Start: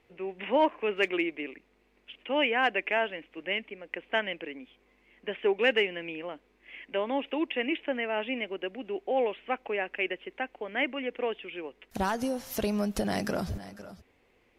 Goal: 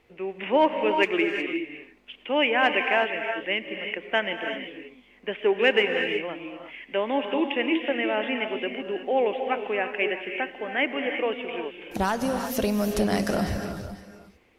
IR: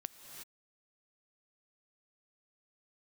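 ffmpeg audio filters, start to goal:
-filter_complex "[1:a]atrim=start_sample=2205[a];[0:a][a]afir=irnorm=-1:irlink=0,volume=8dB"

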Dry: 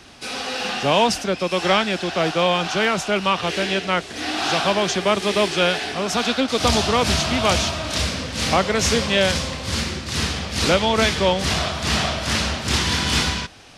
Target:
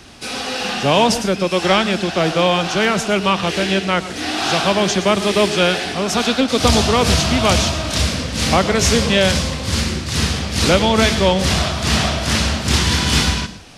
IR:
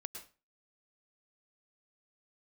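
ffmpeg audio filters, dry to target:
-filter_complex "[0:a]asplit=2[a][b];[1:a]atrim=start_sample=2205,lowshelf=f=440:g=12,highshelf=f=4.9k:g=11[c];[b][c]afir=irnorm=-1:irlink=0,volume=-4.5dB[d];[a][d]amix=inputs=2:normalize=0,volume=-1dB"

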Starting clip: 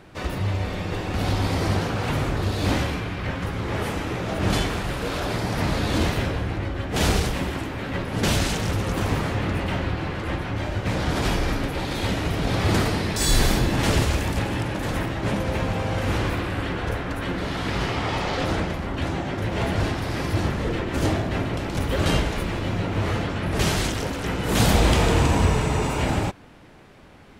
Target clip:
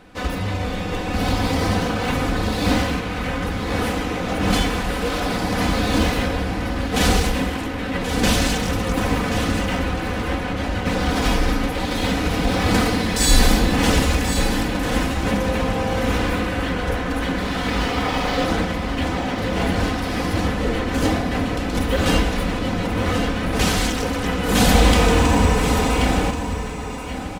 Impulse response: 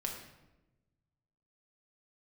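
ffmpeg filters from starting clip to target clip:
-filter_complex "[0:a]aecho=1:1:4:0.64,asplit=2[a][b];[b]acrusher=bits=4:mix=0:aa=0.5,volume=-10dB[c];[a][c]amix=inputs=2:normalize=0,aecho=1:1:1081:0.355"

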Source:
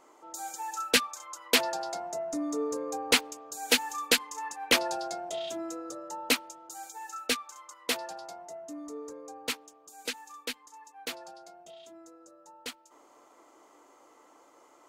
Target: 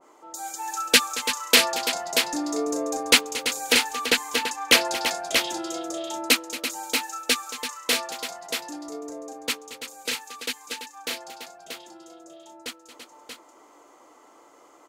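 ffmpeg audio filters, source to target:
-filter_complex "[0:a]asettb=1/sr,asplit=3[a][b][c];[a]atrim=end=3.724[d];[b]atrim=start=3.72:end=4.4,asetpts=PTS-STARTPTS,afade=t=in:d=0.004:c=qsin,afade=t=out:st=0.676:d=0.004:c=qsin,highshelf=f=3.9k:g=-10.5[e];[c]atrim=start=4.396[f];[d][e]acrossfade=d=0.004:c1=hsin:c2=qsin[g];[g][f]acrossfade=d=0.004:c1=qsin:c2=hsin,aecho=1:1:227|336|633|659:0.168|0.316|0.531|0.178,adynamicequalizer=threshold=0.00891:dfrequency=1600:dqfactor=0.7:tfrequency=1600:tqfactor=0.7:attack=5:release=100:ratio=0.375:range=2:mode=boostabove:tftype=highshelf,volume=3.5dB"

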